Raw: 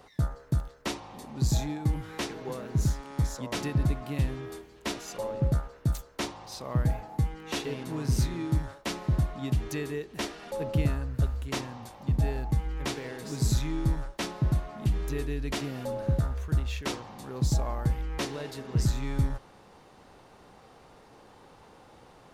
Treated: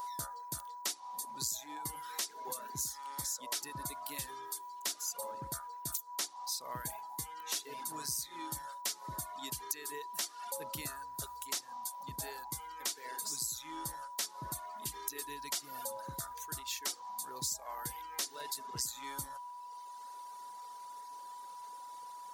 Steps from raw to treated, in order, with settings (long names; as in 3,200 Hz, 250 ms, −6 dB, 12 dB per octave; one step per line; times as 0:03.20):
first difference
steady tone 980 Hz −51 dBFS
parametric band 2,600 Hz −8 dB 0.83 octaves
downward compressor 8 to 1, threshold −46 dBFS, peak gain reduction 12 dB
reverb reduction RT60 1.7 s
level +13 dB